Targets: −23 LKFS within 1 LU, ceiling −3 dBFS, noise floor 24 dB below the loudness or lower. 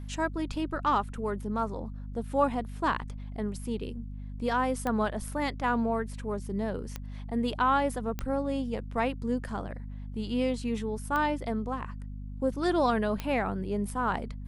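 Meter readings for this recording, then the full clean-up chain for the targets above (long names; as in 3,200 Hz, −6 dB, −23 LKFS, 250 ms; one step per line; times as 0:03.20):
number of clicks 5; mains hum 50 Hz; hum harmonics up to 250 Hz; level of the hum −36 dBFS; integrated loudness −31.0 LKFS; sample peak −13.0 dBFS; target loudness −23.0 LKFS
→ click removal
mains-hum notches 50/100/150/200/250 Hz
level +8 dB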